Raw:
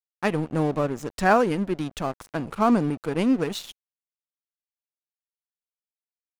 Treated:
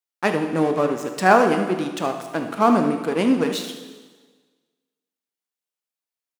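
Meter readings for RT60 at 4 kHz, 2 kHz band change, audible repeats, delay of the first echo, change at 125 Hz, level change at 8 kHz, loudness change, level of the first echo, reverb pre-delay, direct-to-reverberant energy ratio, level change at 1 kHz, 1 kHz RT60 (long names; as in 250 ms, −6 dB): 1.4 s, +5.0 dB, 1, 75 ms, −1.5 dB, +5.0 dB, +4.0 dB, −13.0 dB, 8 ms, 5.0 dB, +5.0 dB, 1.4 s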